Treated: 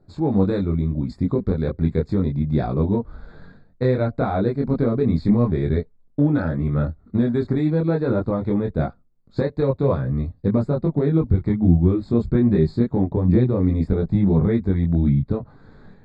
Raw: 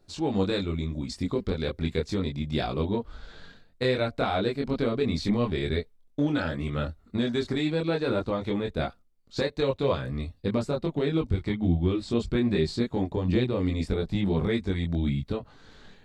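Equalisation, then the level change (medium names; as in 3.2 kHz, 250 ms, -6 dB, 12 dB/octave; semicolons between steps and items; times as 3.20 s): boxcar filter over 15 samples; peaking EQ 140 Hz +7 dB 1.7 oct; +4.0 dB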